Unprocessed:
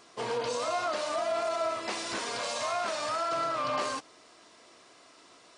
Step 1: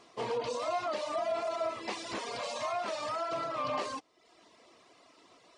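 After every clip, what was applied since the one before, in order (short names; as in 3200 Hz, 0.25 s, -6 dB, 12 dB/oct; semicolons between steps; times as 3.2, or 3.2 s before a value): reverb removal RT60 0.73 s; LPF 3500 Hz 6 dB/oct; bell 1500 Hz -7 dB 0.36 oct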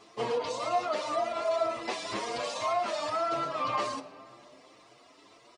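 on a send at -11.5 dB: reverb RT60 2.4 s, pre-delay 7 ms; on the sum: endless flanger 7.2 ms +1.9 Hz; gain +6 dB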